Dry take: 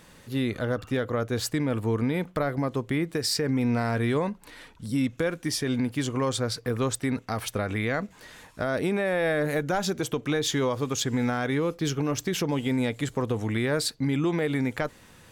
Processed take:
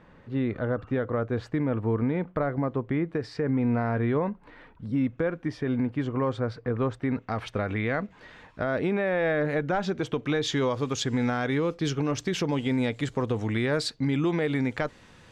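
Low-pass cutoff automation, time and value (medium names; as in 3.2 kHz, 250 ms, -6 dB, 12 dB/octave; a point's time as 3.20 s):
6.98 s 1.7 kHz
7.38 s 2.9 kHz
9.89 s 2.9 kHz
10.68 s 5.7 kHz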